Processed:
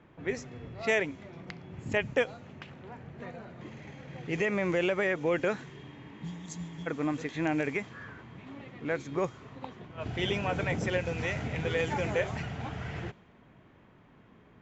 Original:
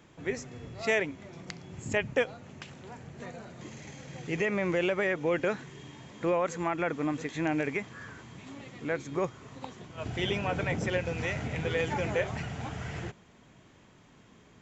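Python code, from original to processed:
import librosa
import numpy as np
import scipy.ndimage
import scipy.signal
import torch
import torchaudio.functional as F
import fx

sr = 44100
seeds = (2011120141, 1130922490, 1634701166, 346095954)

y = fx.env_lowpass(x, sr, base_hz=2100.0, full_db=-24.5)
y = fx.spec_repair(y, sr, seeds[0], start_s=5.97, length_s=0.87, low_hz=240.0, high_hz=3100.0, source='before')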